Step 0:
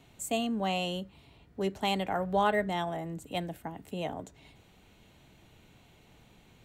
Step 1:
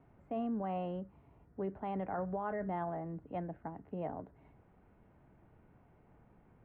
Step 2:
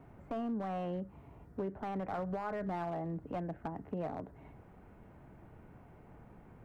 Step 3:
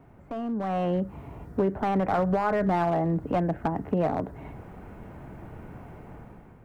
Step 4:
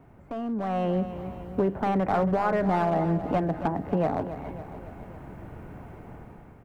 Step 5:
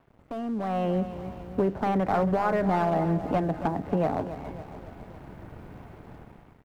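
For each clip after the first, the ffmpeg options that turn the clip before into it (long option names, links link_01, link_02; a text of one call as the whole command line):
ffmpeg -i in.wav -af "lowpass=frequency=1600:width=0.5412,lowpass=frequency=1600:width=1.3066,alimiter=level_in=1dB:limit=-24dB:level=0:latency=1:release=12,volume=-1dB,volume=-4dB" out.wav
ffmpeg -i in.wav -af "acompressor=threshold=-45dB:ratio=2.5,aeval=exprs='clip(val(0),-1,0.00841)':channel_layout=same,volume=8dB" out.wav
ffmpeg -i in.wav -af "dynaudnorm=framelen=280:gausssize=5:maxgain=10.5dB,volume=2.5dB" out.wav
ffmpeg -i in.wav -af "aecho=1:1:277|554|831|1108|1385|1662:0.266|0.152|0.0864|0.0493|0.0281|0.016" out.wav
ffmpeg -i in.wav -af "aeval=exprs='sgn(val(0))*max(abs(val(0))-0.00224,0)':channel_layout=same" out.wav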